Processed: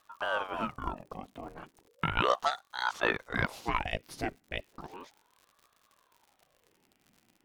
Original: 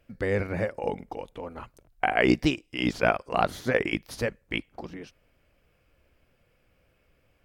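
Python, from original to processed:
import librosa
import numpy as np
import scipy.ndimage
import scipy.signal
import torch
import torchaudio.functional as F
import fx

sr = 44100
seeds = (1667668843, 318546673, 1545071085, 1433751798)

y = fx.dmg_crackle(x, sr, seeds[0], per_s=130.0, level_db=-43.0)
y = fx.ring_lfo(y, sr, carrier_hz=690.0, swing_pct=70, hz=0.35)
y = y * librosa.db_to_amplitude(-3.0)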